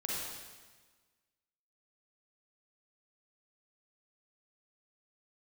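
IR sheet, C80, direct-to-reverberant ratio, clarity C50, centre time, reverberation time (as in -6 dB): 0.0 dB, -5.5 dB, -3.5 dB, 0.108 s, 1.4 s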